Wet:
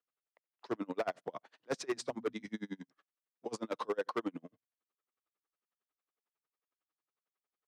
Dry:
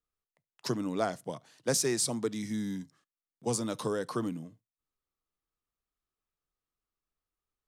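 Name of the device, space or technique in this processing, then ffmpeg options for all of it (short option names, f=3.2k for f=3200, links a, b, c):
helicopter radio: -filter_complex "[0:a]highpass=360,lowpass=2.6k,aeval=exprs='val(0)*pow(10,-35*(0.5-0.5*cos(2*PI*11*n/s))/20)':c=same,asoftclip=type=hard:threshold=-35dB,highpass=87,asettb=1/sr,asplit=3[a][b][c];[a]atrim=end=1.874[d];[b]atrim=start=1.87:end=2.49,asetpts=PTS-STARTPTS,afade=t=in:d=0.004:c=qsin,afade=t=out:st=0.616:d=0.004:c=qsin,bandreject=f=60:t=h:w=6,bandreject=f=120:t=h:w=6,bandreject=f=180:t=h:w=6,bandreject=f=240:t=h:w=6[e];[c]atrim=start=2.486[f];[d][e]acrossfade=d=0.004:c1=hsin:c2=qsin[g];[g][f]acrossfade=d=0.004:c1=qsin:c2=hsin,volume=7dB"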